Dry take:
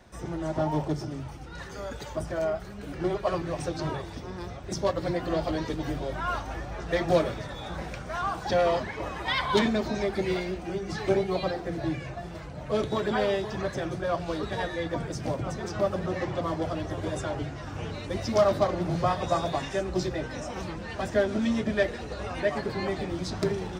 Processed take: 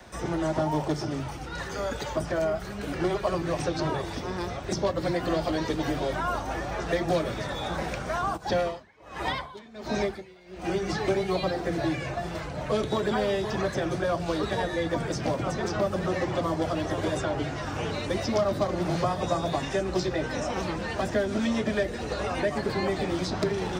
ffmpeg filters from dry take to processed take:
-filter_complex "[0:a]asplit=3[s0][s1][s2];[s0]afade=t=out:st=8.36:d=0.02[s3];[s1]aeval=exprs='val(0)*pow(10,-31*(0.5-0.5*cos(2*PI*1.4*n/s))/20)':c=same,afade=t=in:st=8.36:d=0.02,afade=t=out:st=10.63:d=0.02[s4];[s2]afade=t=in:st=10.63:d=0.02[s5];[s3][s4][s5]amix=inputs=3:normalize=0,lowshelf=f=340:g=-5,acrossover=split=150|360|910|6100[s6][s7][s8][s9][s10];[s6]acompressor=threshold=0.00562:ratio=4[s11];[s7]acompressor=threshold=0.0112:ratio=4[s12];[s8]acompressor=threshold=0.0112:ratio=4[s13];[s9]acompressor=threshold=0.00631:ratio=4[s14];[s10]acompressor=threshold=0.00112:ratio=4[s15];[s11][s12][s13][s14][s15]amix=inputs=5:normalize=0,volume=2.66"

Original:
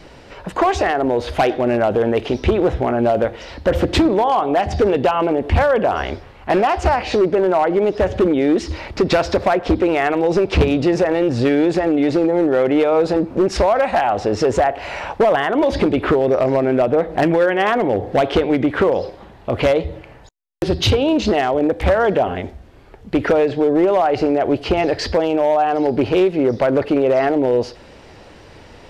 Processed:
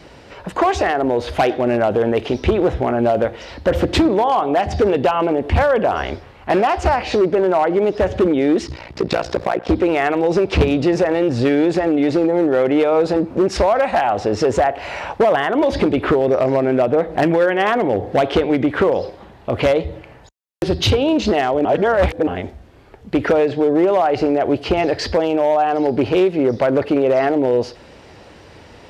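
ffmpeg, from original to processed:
-filter_complex "[0:a]asettb=1/sr,asplit=3[s0][s1][s2];[s0]atrim=end=8.674[s3];[s1]atrim=start=8.67:end=9.69,asetpts=PTS-STARTPTS,afade=t=in:d=0.004:c=qsin,afade=t=out:st=1.016:d=0.004:c=qsin,tremolo=f=59:d=0.974[s4];[s2]atrim=start=9.686[s5];[s3][s4]acrossfade=d=0.004:c1=hsin:c2=qsin[s6];[s6][s5]acrossfade=d=0.004:c1=qsin:c2=hsin,asplit=3[s7][s8][s9];[s7]atrim=end=21.652[s10];[s8]atrim=start=21.648:end=22.272,asetpts=PTS-STARTPTS,areverse[s11];[s9]atrim=start=22.268[s12];[s10][s11]acrossfade=d=0.004:c1=hsin:c2=hsin[s13];[s13][s12]acrossfade=d=0.004:c1=hsin:c2=hsin,highpass=47"

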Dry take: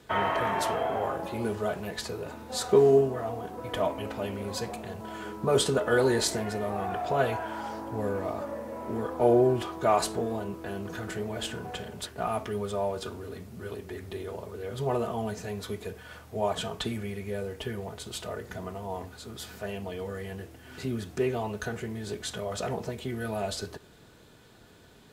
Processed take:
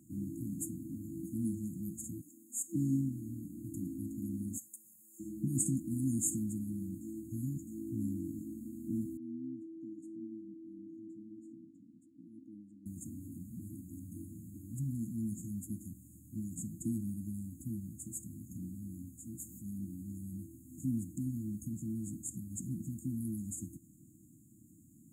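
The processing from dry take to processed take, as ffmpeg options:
-filter_complex "[0:a]asettb=1/sr,asplit=3[s0][s1][s2];[s0]atrim=end=2.214[s3];[s1]atrim=start=2.21:end=2.75,asetpts=PTS-STARTPTS,afade=t=in:d=0.004:c=qsin,afade=t=out:st=0.536:d=0.004:c=qsin,highpass=550[s4];[s2]atrim=start=2.746[s5];[s3][s4]acrossfade=d=0.004:c1=hsin:c2=qsin[s6];[s6][s5]acrossfade=d=0.004:c1=qsin:c2=hsin,asettb=1/sr,asplit=3[s7][s8][s9];[s7]atrim=end=4.584[s10];[s8]atrim=start=4.58:end=5.2,asetpts=PTS-STARTPTS,afade=t=in:d=0.004:c=qsin,afade=t=out:st=0.616:d=0.004:c=qsin,aderivative[s11];[s9]atrim=start=5.196[s12];[s10][s11]acrossfade=d=0.004:c1=hsin:c2=qsin[s13];[s13][s12]acrossfade=d=0.004:c1=qsin:c2=hsin,asettb=1/sr,asplit=3[s14][s15][s16];[s14]atrim=end=9.174[s17];[s15]atrim=start=9.17:end=12.86,asetpts=PTS-STARTPTS,afade=t=in:d=0.004:c=qsin,afade=t=out:st=3.686:d=0.004:c=qsin,asplit=3[s18][s19][s20];[s18]bandpass=f=300:t=q:w=8,volume=1[s21];[s19]bandpass=f=870:t=q:w=8,volume=0.501[s22];[s20]bandpass=f=2240:t=q:w=8,volume=0.355[s23];[s21][s22][s23]amix=inputs=3:normalize=0[s24];[s16]atrim=start=12.856[s25];[s17][s24]acrossfade=d=0.004:c1=hsin:c2=qsin[s26];[s26][s25]acrossfade=d=0.004:c1=qsin:c2=hsin,asplit=3[s27][s28][s29];[s27]atrim=end=7.012[s30];[s28]atrim=start=7.008:end=7.672,asetpts=PTS-STARTPTS,areverse[s31];[s29]atrim=start=7.668[s32];[s30][s31]acrossfade=d=0.004:c1=hsin:c2=hsin[s33];[s33][s32]acrossfade=d=0.004:c1=hsin:c2=hsin,highpass=120,afftfilt=real='re*(1-between(b*sr/4096,340,6500))':imag='im*(1-between(b*sr/4096,340,6500))':win_size=4096:overlap=0.75"

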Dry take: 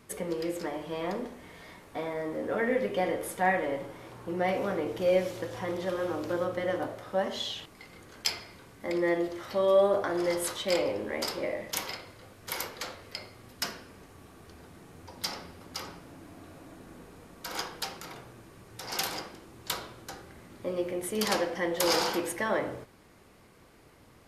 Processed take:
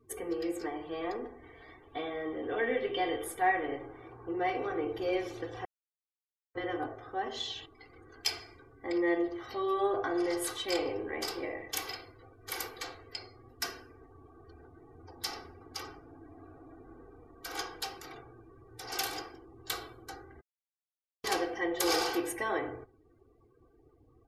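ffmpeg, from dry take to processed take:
-filter_complex "[0:a]asettb=1/sr,asplit=3[s0][s1][s2];[s0]atrim=end=1.824[s3];[s1]atrim=start=1.82:end=3.24,asetpts=PTS-STARTPTS,afade=t=in:d=0.004:c=qsin,afade=t=out:st=1.416:d=0.004:c=qsin,equalizer=f=3200:w=2.8:g=8.5[s4];[s2]atrim=start=3.236[s5];[s3][s4]acrossfade=d=0.004:c1=hsin:c2=qsin[s6];[s6][s5]acrossfade=d=0.004:c1=qsin:c2=hsin,asplit=5[s7][s8][s9][s10][s11];[s7]atrim=end=5.65,asetpts=PTS-STARTPTS,afade=t=out:st=5.646:d=0.004:c=hsin[s12];[s8]atrim=start=5.65:end=6.55,asetpts=PTS-STARTPTS,volume=0[s13];[s9]atrim=start=6.55:end=20.41,asetpts=PTS-STARTPTS,afade=t=in:d=0.004:c=hsin,afade=t=out:st=13.856:d=0.004:c=hsin[s14];[s10]atrim=start=20.41:end=21.24,asetpts=PTS-STARTPTS,volume=0[s15];[s11]atrim=start=21.24,asetpts=PTS-STARTPTS,afade=t=in:d=0.004:c=hsin[s16];[s12][s13][s14][s15][s16]concat=n=5:v=0:a=1,afftdn=nr=26:nf=-53,aecho=1:1:2.6:0.99,volume=0.531"

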